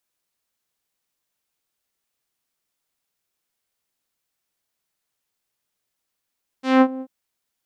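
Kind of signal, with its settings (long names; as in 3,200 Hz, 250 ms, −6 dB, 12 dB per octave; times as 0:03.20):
subtractive voice saw C4 12 dB per octave, low-pass 570 Hz, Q 0.87, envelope 3.5 octaves, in 0.28 s, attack 184 ms, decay 0.06 s, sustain −18 dB, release 0.06 s, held 0.38 s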